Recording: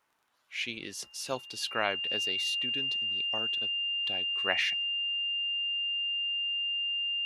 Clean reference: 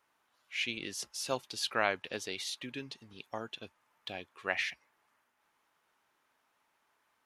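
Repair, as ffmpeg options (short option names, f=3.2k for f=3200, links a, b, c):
-af "adeclick=t=4,bandreject=f=2.8k:w=30,asetnsamples=n=441:p=0,asendcmd='4.29 volume volume -3dB',volume=0dB"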